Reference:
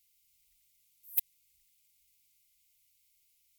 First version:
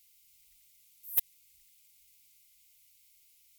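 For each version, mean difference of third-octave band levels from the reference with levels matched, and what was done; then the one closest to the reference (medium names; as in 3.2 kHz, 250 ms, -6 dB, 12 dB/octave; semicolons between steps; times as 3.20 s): 5.0 dB: bass shelf 220 Hz -3 dB; in parallel at -0.5 dB: peak limiter -23 dBFS, peak gain reduction 10 dB; on the sum: saturation -15.5 dBFS, distortion -15 dB; trim +1.5 dB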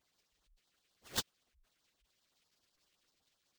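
21.0 dB: loudest bins only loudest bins 1; sample-rate reducer 12 kHz, jitter 20%; LFO notch sine 7.8 Hz 790–2500 Hz; trim +17 dB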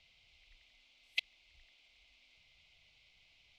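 11.0 dB: low-pass 3.6 kHz 24 dB/octave; peaking EQ 670 Hz +11 dB 0.79 oct; hum notches 50/100/150/200 Hz; trim +17.5 dB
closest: first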